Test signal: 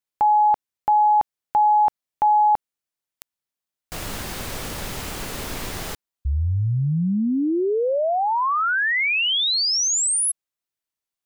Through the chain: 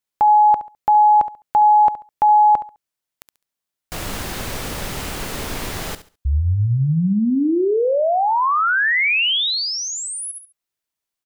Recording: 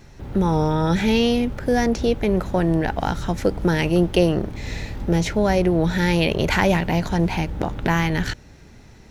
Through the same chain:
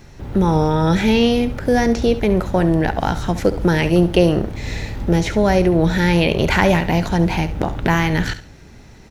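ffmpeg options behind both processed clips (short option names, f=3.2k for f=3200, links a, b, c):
-filter_complex "[0:a]asplit=2[a][b];[b]aecho=0:1:69|138|207:0.2|0.0499|0.0125[c];[a][c]amix=inputs=2:normalize=0,acrossover=split=3700[d][e];[e]acompressor=threshold=-32dB:ratio=4:attack=1:release=60[f];[d][f]amix=inputs=2:normalize=0,volume=3.5dB"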